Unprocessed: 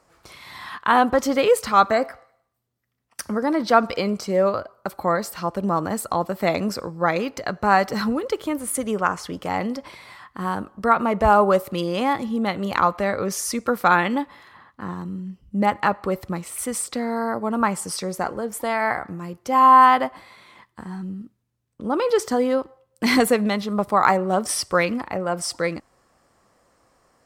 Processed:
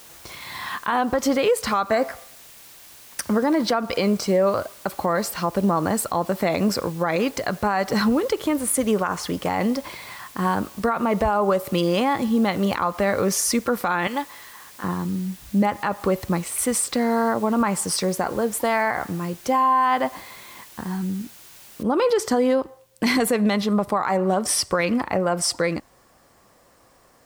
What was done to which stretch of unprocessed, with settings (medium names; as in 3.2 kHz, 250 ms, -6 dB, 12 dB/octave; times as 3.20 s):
14.07–14.84 s: high-pass 950 Hz 6 dB/octave
21.83 s: noise floor step -51 dB -70 dB
whole clip: band-stop 1.3 kHz, Q 20; compression, threshold -19 dBFS; peak limiter -16.5 dBFS; trim +5 dB